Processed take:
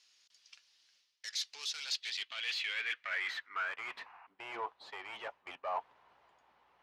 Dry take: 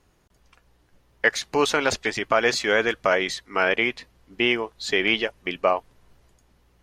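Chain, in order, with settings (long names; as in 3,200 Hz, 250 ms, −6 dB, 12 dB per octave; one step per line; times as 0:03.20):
parametric band 3,000 Hz +12 dB 2.2 octaves
reversed playback
downward compressor 10 to 1, threshold −24 dBFS, peak gain reduction 18.5 dB
reversed playback
tube saturation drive 30 dB, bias 0.4
sound drawn into the spectrogram noise, 0:04.05–0:04.27, 660–2,900 Hz −53 dBFS
band-pass filter sweep 5,200 Hz → 890 Hz, 0:01.71–0:04.16
level +3 dB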